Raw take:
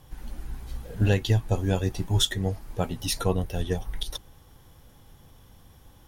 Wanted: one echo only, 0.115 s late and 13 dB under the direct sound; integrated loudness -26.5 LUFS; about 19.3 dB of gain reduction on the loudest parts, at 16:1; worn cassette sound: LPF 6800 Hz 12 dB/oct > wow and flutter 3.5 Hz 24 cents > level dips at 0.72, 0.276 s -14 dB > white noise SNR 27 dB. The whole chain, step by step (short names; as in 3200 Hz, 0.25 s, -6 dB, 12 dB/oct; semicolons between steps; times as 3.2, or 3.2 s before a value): compressor 16:1, threshold -37 dBFS; LPF 6800 Hz 12 dB/oct; echo 0.115 s -13 dB; wow and flutter 3.5 Hz 24 cents; level dips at 0.72, 0.276 s -14 dB; white noise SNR 27 dB; gain +18 dB